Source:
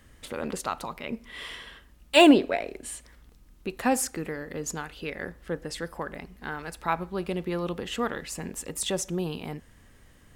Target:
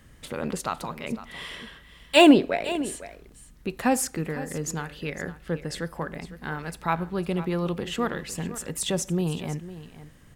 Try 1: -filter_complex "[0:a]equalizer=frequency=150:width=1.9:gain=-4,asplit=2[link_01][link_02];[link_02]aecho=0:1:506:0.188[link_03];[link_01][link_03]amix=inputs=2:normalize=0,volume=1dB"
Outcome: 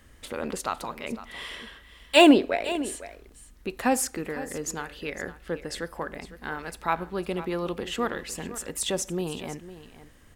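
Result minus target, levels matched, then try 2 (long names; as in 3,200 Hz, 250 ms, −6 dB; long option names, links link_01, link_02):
125 Hz band −7.5 dB
-filter_complex "[0:a]equalizer=frequency=150:width=1.9:gain=7,asplit=2[link_01][link_02];[link_02]aecho=0:1:506:0.188[link_03];[link_01][link_03]amix=inputs=2:normalize=0,volume=1dB"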